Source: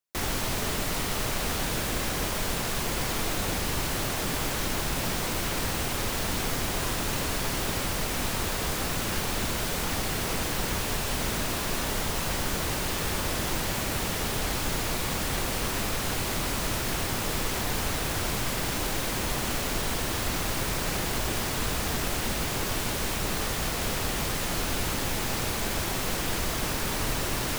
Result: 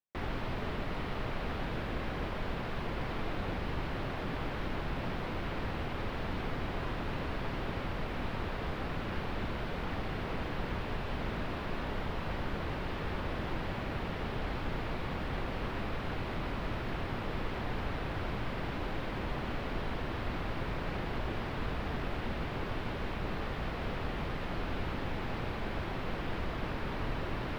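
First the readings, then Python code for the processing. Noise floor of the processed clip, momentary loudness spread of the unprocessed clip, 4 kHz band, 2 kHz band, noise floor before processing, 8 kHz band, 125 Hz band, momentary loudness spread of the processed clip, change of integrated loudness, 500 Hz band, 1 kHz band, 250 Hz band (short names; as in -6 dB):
-38 dBFS, 0 LU, -14.5 dB, -8.5 dB, -30 dBFS, -32.0 dB, -4.5 dB, 1 LU, -9.0 dB, -5.5 dB, -6.5 dB, -5.0 dB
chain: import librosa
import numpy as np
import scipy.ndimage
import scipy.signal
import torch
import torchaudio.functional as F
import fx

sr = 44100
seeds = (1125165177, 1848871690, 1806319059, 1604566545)

y = fx.air_absorb(x, sr, metres=390.0)
y = F.gain(torch.from_numpy(y), -4.5).numpy()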